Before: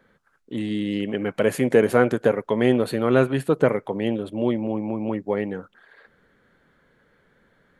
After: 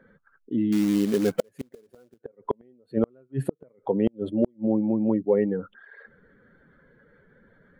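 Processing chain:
expanding power law on the bin magnitudes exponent 1.7
gate with flip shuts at −13 dBFS, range −41 dB
0:00.72–0:02.21: floating-point word with a short mantissa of 2 bits
level +3.5 dB

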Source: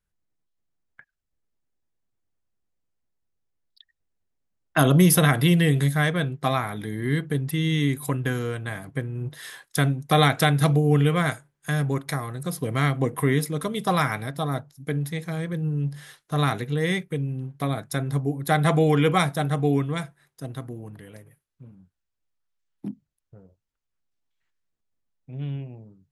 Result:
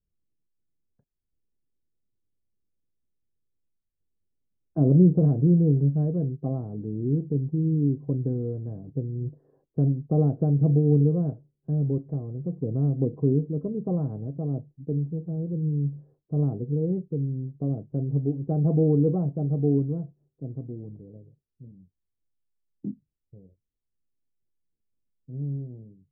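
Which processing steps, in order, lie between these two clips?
inverse Chebyshev low-pass filter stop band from 2,800 Hz, stop band 80 dB

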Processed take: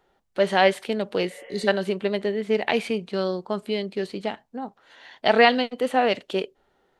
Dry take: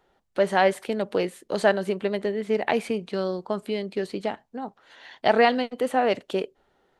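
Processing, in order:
healed spectral selection 0:01.33–0:01.66, 440–3,400 Hz before
dynamic equaliser 3,400 Hz, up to +8 dB, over −43 dBFS, Q 0.83
harmonic and percussive parts rebalanced harmonic +4 dB
level −2.5 dB

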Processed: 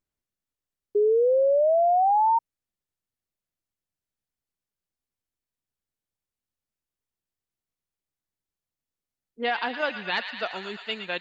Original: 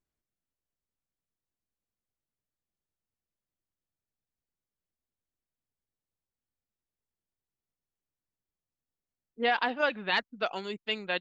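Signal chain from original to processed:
delay with a high-pass on its return 115 ms, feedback 77%, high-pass 1,400 Hz, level −8 dB
sound drawn into the spectrogram rise, 0:00.95–0:02.39, 410–940 Hz −20 dBFS
tape wow and flutter 28 cents

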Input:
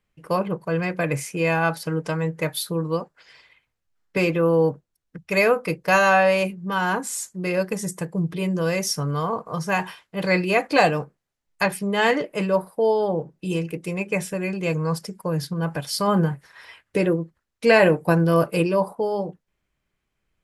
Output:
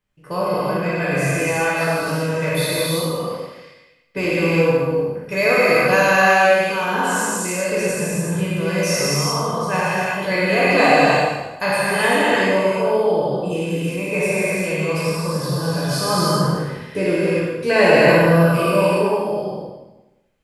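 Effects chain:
peak hold with a decay on every bin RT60 1.00 s
reverb whose tail is shaped and stops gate 410 ms flat, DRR −6.5 dB
level −5 dB

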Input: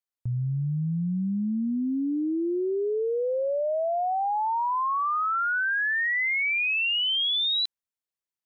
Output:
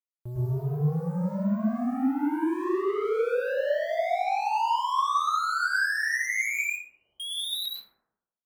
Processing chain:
bit reduction 9 bits
soft clipping −34 dBFS, distortion −11 dB
0:06.64–0:07.20: transistor ladder low-pass 760 Hz, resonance 35%
dense smooth reverb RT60 0.9 s, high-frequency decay 0.3×, pre-delay 95 ms, DRR −7 dB

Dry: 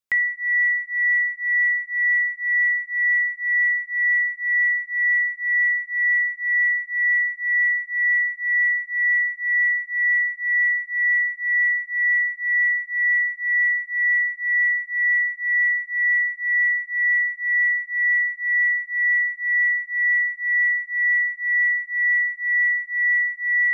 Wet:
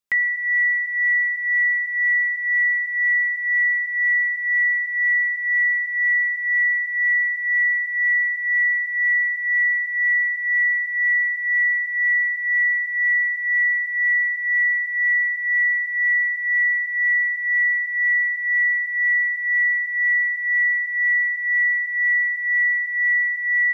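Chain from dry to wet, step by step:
comb filter 5 ms, depth 45%
level that may fall only so fast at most 34 dB per second

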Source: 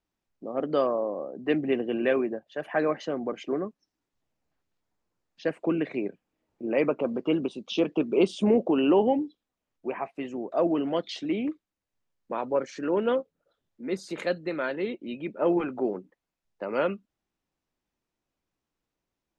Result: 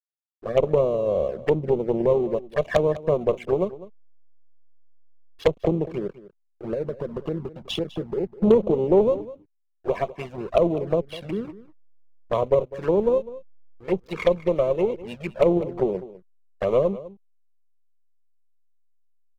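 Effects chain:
treble cut that deepens with the level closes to 370 Hz, closed at −23 dBFS
comb filter 1.8 ms, depth 92%
0:05.92–0:08.37: downward compressor 8 to 1, threshold −29 dBFS, peak gain reduction 10 dB
harmonic generator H 2 −13 dB, 4 −12 dB, 6 −29 dB, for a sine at −14.5 dBFS
slack as between gear wheels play −41.5 dBFS
flanger swept by the level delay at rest 3 ms, full sweep at −26 dBFS
single-tap delay 202 ms −17 dB
level +8 dB

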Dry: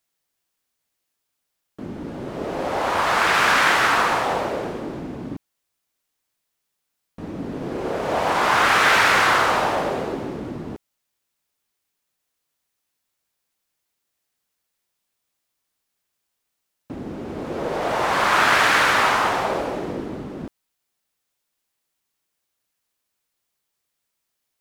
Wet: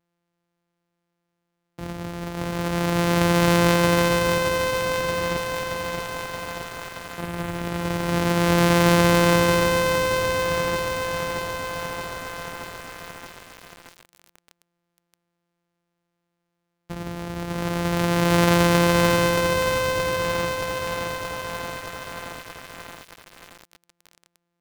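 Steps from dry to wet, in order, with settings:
samples sorted by size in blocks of 256 samples
high-shelf EQ 3,300 Hz −4.5 dB
feedback echo at a low word length 625 ms, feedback 80%, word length 6 bits, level −4 dB

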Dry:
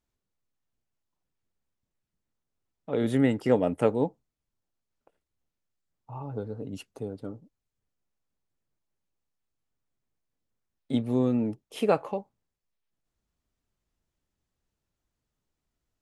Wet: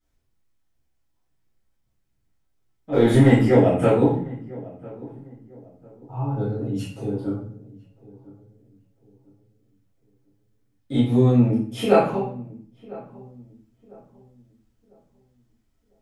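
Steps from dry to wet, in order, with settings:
0:02.92–0:03.41: leveller curve on the samples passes 1
feedback echo with a low-pass in the loop 999 ms, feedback 35%, low-pass 1,000 Hz, level −19.5 dB
convolution reverb RT60 0.50 s, pre-delay 4 ms, DRR −13 dB
level −7 dB

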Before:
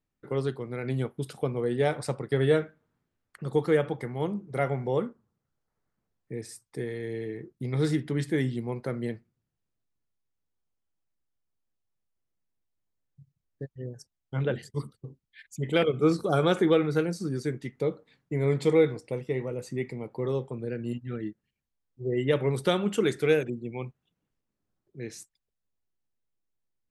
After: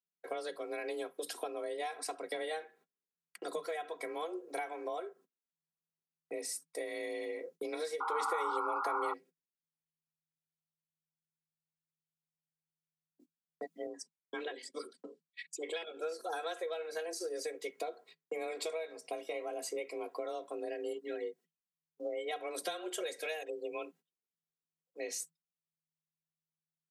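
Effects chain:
noise gate −52 dBFS, range −26 dB
high-shelf EQ 2,700 Hz +9.5 dB
comb filter 3.4 ms, depth 95%
downward compressor 12 to 1, threshold −33 dBFS, peak gain reduction 19 dB
0:08.00–0:09.14: sound drawn into the spectrogram noise 610–1,300 Hz −33 dBFS
frequency shifter +160 Hz
0:13.87–0:15.97: loudspeaker in its box 130–8,500 Hz, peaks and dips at 160 Hz −7 dB, 700 Hz −9 dB, 6,300 Hz −6 dB
level −2.5 dB

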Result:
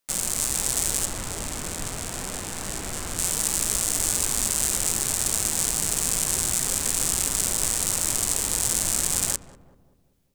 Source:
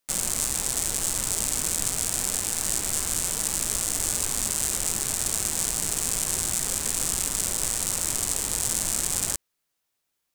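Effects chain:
automatic gain control gain up to 3.5 dB
0:01.05–0:03.19: high-shelf EQ 4,000 Hz −12 dB
feedback echo with a low-pass in the loop 193 ms, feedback 54%, low-pass 910 Hz, level −12.5 dB

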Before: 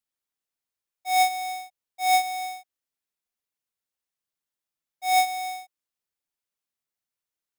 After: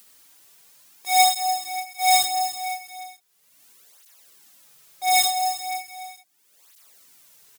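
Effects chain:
low-shelf EQ 78 Hz −9 dB
multi-tap delay 61/68/294/568 ms −6.5/−5.5/−14/−15.5 dB
in parallel at 0 dB: upward compression, threshold −29 dBFS
on the sum: high-shelf EQ 4,400 Hz +6.5 dB
through-zero flanger with one copy inverted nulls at 0.37 Hz, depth 6.2 ms
level −1 dB

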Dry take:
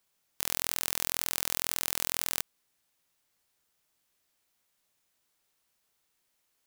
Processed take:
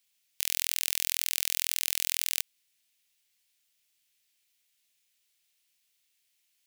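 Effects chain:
high shelf with overshoot 1,700 Hz +12 dB, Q 1.5
level −10 dB

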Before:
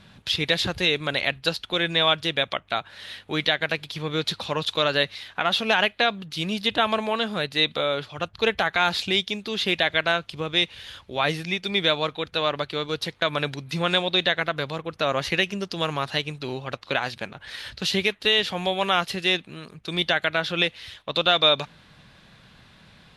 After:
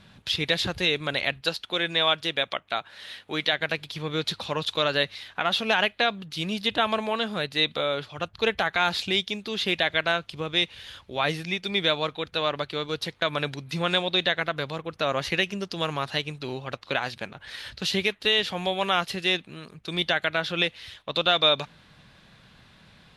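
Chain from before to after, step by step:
0:01.41–0:03.53: low-shelf EQ 130 Hz −11.5 dB
level −2 dB

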